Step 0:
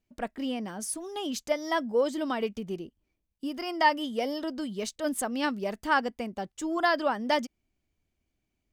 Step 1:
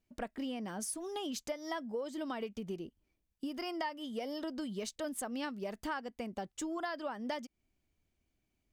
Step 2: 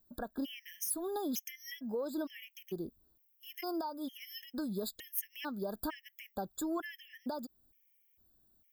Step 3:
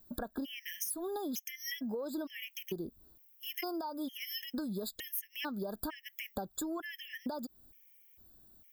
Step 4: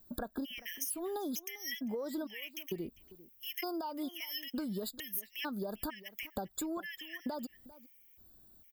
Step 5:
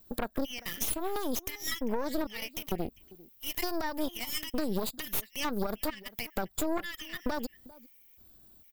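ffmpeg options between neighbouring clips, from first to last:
-af "acompressor=threshold=-35dB:ratio=6,volume=-1dB"
-af "alimiter=level_in=7.5dB:limit=-24dB:level=0:latency=1:release=168,volume=-7.5dB,aexciter=amount=10.4:drive=6.5:freq=12k,afftfilt=real='re*gt(sin(2*PI*1.1*pts/sr)*(1-2*mod(floor(b*sr/1024/1700),2)),0)':imag='im*gt(sin(2*PI*1.1*pts/sr)*(1-2*mod(floor(b*sr/1024/1700),2)),0)':win_size=1024:overlap=0.75,volume=4dB"
-af "acompressor=threshold=-45dB:ratio=6,volume=9dB"
-filter_complex "[0:a]asplit=2[a][b];[b]adelay=396.5,volume=-18dB,highshelf=f=4k:g=-8.92[c];[a][c]amix=inputs=2:normalize=0"
-af "aeval=exprs='0.0841*(cos(1*acos(clip(val(0)/0.0841,-1,1)))-cos(1*PI/2))+0.0188*(cos(8*acos(clip(val(0)/0.0841,-1,1)))-cos(8*PI/2))':c=same,volume=3dB"

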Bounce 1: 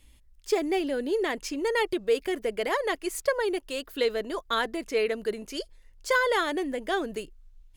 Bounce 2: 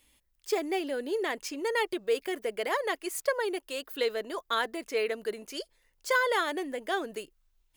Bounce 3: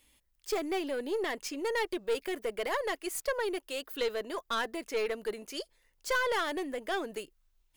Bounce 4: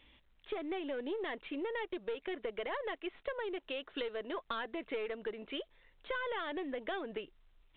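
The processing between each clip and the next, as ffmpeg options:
-af "lowpass=f=1.5k:p=1,aemphasis=mode=production:type=riaa"
-af "aeval=exprs='(tanh(15.8*val(0)+0.25)-tanh(0.25))/15.8':c=same"
-af "acompressor=threshold=-41dB:ratio=8,volume=5dB" -ar 8000 -c:a pcm_mulaw

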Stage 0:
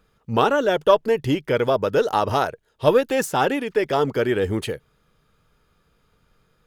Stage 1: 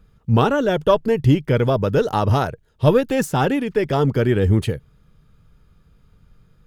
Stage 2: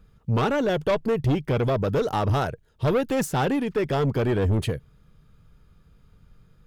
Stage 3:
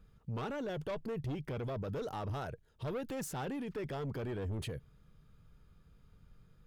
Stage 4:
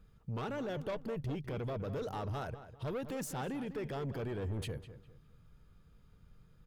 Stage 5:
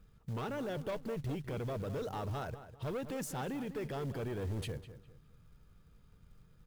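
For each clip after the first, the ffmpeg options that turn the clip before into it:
-af "bass=f=250:g=14,treble=f=4k:g=0,volume=-1dB"
-af "asoftclip=type=tanh:threshold=-16dB,volume=-1.5dB"
-af "alimiter=level_in=3.5dB:limit=-24dB:level=0:latency=1:release=21,volume=-3.5dB,volume=-6.5dB"
-filter_complex "[0:a]asplit=2[a][b];[b]adelay=201,lowpass=f=2.7k:p=1,volume=-12dB,asplit=2[c][d];[d]adelay=201,lowpass=f=2.7k:p=1,volume=0.33,asplit=2[e][f];[f]adelay=201,lowpass=f=2.7k:p=1,volume=0.33[g];[a][c][e][g]amix=inputs=4:normalize=0"
-af "acrusher=bits=6:mode=log:mix=0:aa=0.000001"

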